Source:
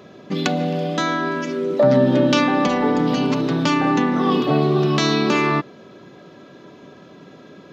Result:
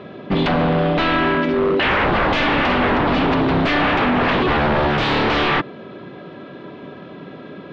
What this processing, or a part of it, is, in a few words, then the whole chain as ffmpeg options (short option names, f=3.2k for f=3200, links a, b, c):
synthesiser wavefolder: -filter_complex "[0:a]aeval=exprs='0.106*(abs(mod(val(0)/0.106+3,4)-2)-1)':c=same,lowpass=f=3.5k:w=0.5412,lowpass=f=3.5k:w=1.3066,asettb=1/sr,asplit=3[a][b][c];[a]atrim=end=0.634[d];[b]atrim=start=0.63:end=1.51,asetpts=PTS-STARTPTS,afade=t=in:d=0.004:c=qsin,afade=t=out:st=0.876:d=0.004:c=qsin,lowpass=5.9k[e];[c]atrim=start=1.506[f];[d][e]acrossfade=d=0.004:c1=hsin:c2=qsin[g];[g][f]acrossfade=d=0.004:c1=qsin:c2=hsin,volume=7.5dB"